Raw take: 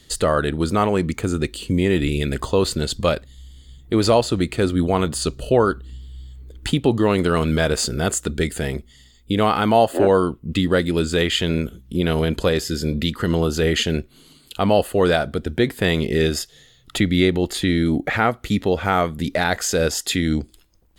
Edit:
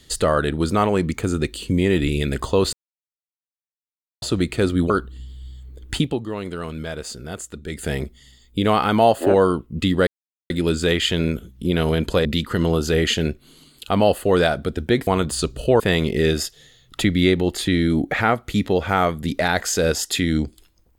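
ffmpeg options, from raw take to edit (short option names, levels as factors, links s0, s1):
-filter_complex "[0:a]asplit=10[s0][s1][s2][s3][s4][s5][s6][s7][s8][s9];[s0]atrim=end=2.73,asetpts=PTS-STARTPTS,afade=t=out:st=2.726:d=0.004:c=hsin[s10];[s1]atrim=start=2.73:end=4.22,asetpts=PTS-STARTPTS,volume=0[s11];[s2]atrim=start=4.22:end=4.902,asetpts=PTS-STARTPTS,afade=t=in:d=0.004:c=hsin[s12];[s3]atrim=start=5.628:end=6.93,asetpts=PTS-STARTPTS,afade=t=out:st=1.092:d=0.21:silence=0.281838[s13];[s4]atrim=start=6.93:end=8.41,asetpts=PTS-STARTPTS,volume=0.282[s14];[s5]atrim=start=8.41:end=10.8,asetpts=PTS-STARTPTS,afade=t=in:d=0.21:silence=0.281838,afade=t=out:st=2.386:d=0.004:c=hsin,apad=pad_dur=0.43[s15];[s6]atrim=start=10.8:end=12.552,asetpts=PTS-STARTPTS,afade=t=in:d=0.004:c=hsin[s16];[s7]atrim=start=12.938:end=15.762[s17];[s8]atrim=start=4.898:end=5.632[s18];[s9]atrim=start=15.758[s19];[s10][s11][s12]concat=n=3:v=0:a=1[s20];[s13][s14][s15][s16]concat=n=4:v=0:a=1[s21];[s20][s21]acrossfade=d=0.004:c1=hsin:c2=hsin[s22];[s22][s17]acrossfade=d=0.004:c1=hsin:c2=hsin[s23];[s23][s18]acrossfade=d=0.004:c1=hsin:c2=hsin[s24];[s24][s19]acrossfade=d=0.004:c1=hsin:c2=hsin"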